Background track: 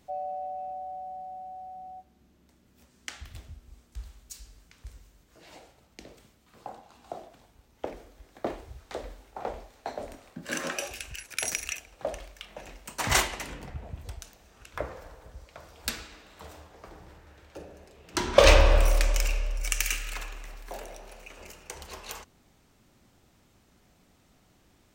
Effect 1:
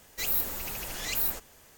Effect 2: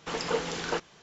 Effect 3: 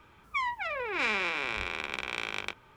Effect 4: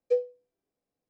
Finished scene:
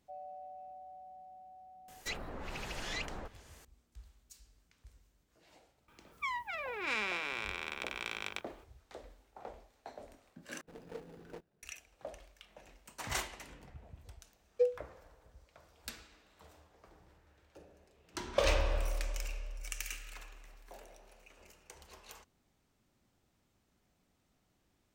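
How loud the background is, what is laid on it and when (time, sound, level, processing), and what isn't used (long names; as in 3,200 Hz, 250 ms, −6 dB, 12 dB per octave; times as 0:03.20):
background track −13 dB
0:01.88: mix in 1 −1.5 dB + treble cut that deepens with the level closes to 1,300 Hz, closed at −26.5 dBFS
0:05.88: mix in 3 −6.5 dB + high-shelf EQ 8,500 Hz +10.5 dB
0:10.61: overwrite with 2 −15 dB + running median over 41 samples
0:14.49: mix in 4 −4 dB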